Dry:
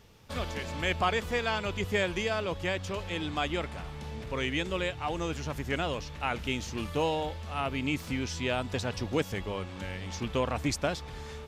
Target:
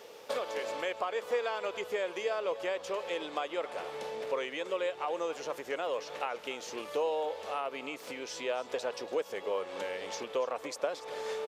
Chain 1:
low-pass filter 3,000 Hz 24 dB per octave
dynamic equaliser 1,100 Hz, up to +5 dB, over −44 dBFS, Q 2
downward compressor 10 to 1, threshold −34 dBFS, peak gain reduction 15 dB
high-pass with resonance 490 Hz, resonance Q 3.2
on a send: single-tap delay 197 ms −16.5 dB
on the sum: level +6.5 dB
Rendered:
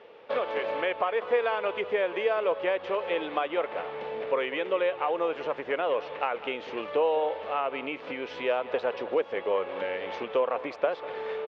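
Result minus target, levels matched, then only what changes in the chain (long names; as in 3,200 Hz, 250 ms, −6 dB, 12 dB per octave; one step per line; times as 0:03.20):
downward compressor: peak gain reduction −6.5 dB; echo 88 ms early; 4,000 Hz band −4.5 dB
change: downward compressor 10 to 1, threshold −41 dBFS, peak gain reduction 21 dB
change: single-tap delay 285 ms −16.5 dB
remove: low-pass filter 3,000 Hz 24 dB per octave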